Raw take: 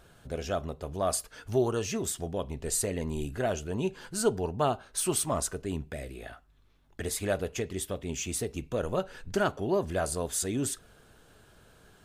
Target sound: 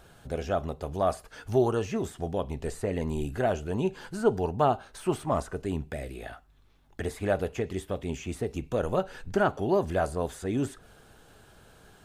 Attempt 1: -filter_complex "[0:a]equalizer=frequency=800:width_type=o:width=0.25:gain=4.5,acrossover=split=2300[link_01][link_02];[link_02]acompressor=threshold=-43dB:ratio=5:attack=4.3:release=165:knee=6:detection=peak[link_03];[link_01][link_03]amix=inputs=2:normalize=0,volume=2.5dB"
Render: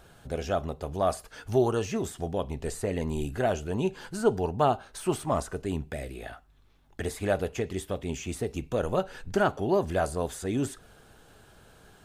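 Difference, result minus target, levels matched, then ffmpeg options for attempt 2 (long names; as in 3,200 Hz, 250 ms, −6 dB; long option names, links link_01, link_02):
downward compressor: peak gain reduction −5.5 dB
-filter_complex "[0:a]equalizer=frequency=800:width_type=o:width=0.25:gain=4.5,acrossover=split=2300[link_01][link_02];[link_02]acompressor=threshold=-50dB:ratio=5:attack=4.3:release=165:knee=6:detection=peak[link_03];[link_01][link_03]amix=inputs=2:normalize=0,volume=2.5dB"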